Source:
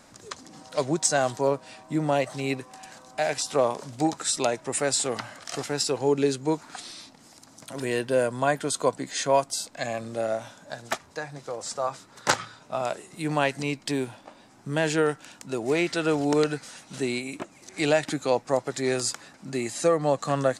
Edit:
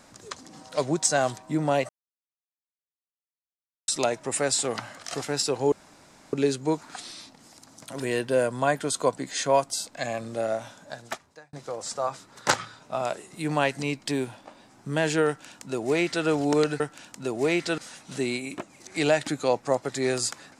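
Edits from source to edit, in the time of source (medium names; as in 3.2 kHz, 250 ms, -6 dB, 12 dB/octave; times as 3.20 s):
1.38–1.79 s: delete
2.30–4.29 s: mute
6.13 s: insert room tone 0.61 s
10.61–11.33 s: fade out
15.07–16.05 s: copy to 16.60 s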